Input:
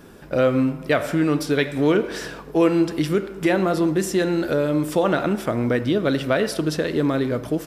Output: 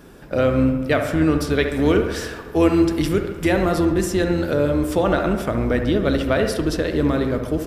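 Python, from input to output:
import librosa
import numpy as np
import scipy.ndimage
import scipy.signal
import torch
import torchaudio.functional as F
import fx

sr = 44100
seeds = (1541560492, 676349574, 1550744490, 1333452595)

y = fx.octave_divider(x, sr, octaves=2, level_db=-5.0)
y = fx.high_shelf(y, sr, hz=4900.0, db=5.0, at=(1.68, 3.85))
y = fx.echo_wet_lowpass(y, sr, ms=69, feedback_pct=67, hz=2300.0, wet_db=-8.5)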